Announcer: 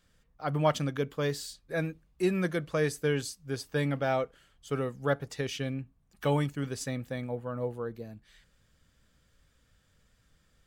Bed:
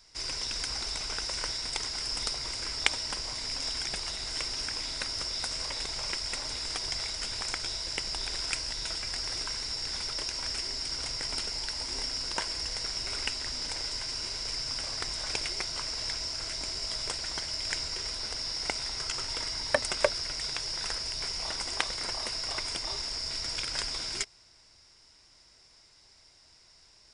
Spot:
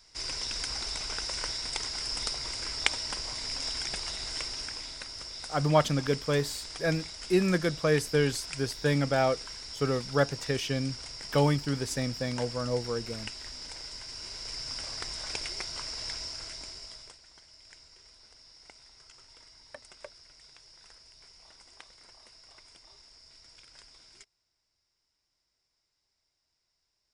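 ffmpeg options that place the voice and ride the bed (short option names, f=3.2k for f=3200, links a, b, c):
-filter_complex "[0:a]adelay=5100,volume=3dB[a];[1:a]volume=4dB,afade=t=out:st=4.24:d=0.8:silence=0.446684,afade=t=in:st=14.06:d=0.69:silence=0.595662,afade=t=out:st=16.19:d=1:silence=0.125893[b];[a][b]amix=inputs=2:normalize=0"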